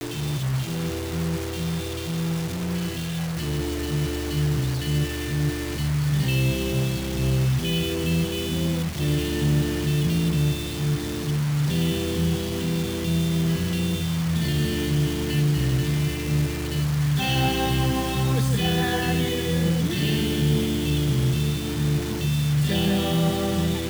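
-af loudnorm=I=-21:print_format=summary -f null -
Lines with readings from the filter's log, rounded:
Input Integrated:    -24.1 LUFS
Input True Peak:     -11.4 dBTP
Input LRA:             3.4 LU
Input Threshold:     -34.1 LUFS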